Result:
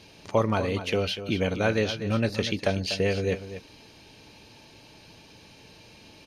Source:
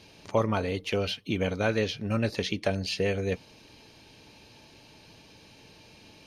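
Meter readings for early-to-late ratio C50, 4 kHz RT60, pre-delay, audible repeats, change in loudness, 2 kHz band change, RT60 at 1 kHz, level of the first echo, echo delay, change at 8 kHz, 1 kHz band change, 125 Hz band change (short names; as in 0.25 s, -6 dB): none, none, none, 1, +2.5 dB, +2.5 dB, none, -11.5 dB, 0.243 s, +2.5 dB, +2.5 dB, +2.5 dB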